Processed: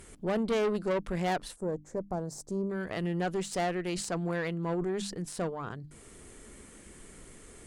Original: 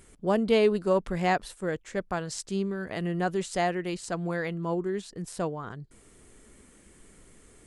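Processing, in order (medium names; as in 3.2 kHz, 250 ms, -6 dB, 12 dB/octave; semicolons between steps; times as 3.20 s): valve stage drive 25 dB, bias 0.45; 1.56–2.70 s: FFT filter 770 Hz 0 dB, 2.9 kHz -27 dB, 6.1 kHz -7 dB; in parallel at +2.5 dB: compression, threshold -48 dBFS, peak gain reduction 20 dB; on the sum: hum notches 50/100/150/200/250/300 Hz; 3.83–5.21 s: decay stretcher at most 53 dB/s; trim -1 dB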